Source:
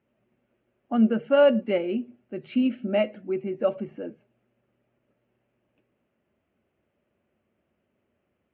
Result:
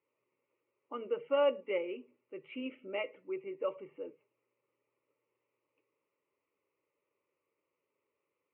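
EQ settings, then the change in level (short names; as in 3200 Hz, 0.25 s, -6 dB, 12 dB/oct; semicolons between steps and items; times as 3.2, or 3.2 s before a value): speaker cabinet 320–2300 Hz, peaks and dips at 360 Hz -8 dB, 610 Hz -10 dB, 1400 Hz -8 dB; fixed phaser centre 1100 Hz, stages 8; 0.0 dB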